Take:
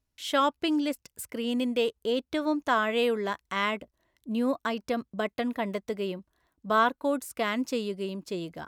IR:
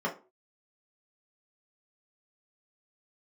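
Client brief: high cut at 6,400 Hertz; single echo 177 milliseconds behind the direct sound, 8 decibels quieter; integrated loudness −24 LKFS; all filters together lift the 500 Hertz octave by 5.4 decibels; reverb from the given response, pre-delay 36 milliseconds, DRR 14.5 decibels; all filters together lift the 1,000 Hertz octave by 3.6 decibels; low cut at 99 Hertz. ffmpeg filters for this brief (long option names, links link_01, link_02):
-filter_complex "[0:a]highpass=99,lowpass=6400,equalizer=frequency=500:width_type=o:gain=5.5,equalizer=frequency=1000:width_type=o:gain=3,aecho=1:1:177:0.398,asplit=2[link_01][link_02];[1:a]atrim=start_sample=2205,adelay=36[link_03];[link_02][link_03]afir=irnorm=-1:irlink=0,volume=-23dB[link_04];[link_01][link_04]amix=inputs=2:normalize=0,volume=1dB"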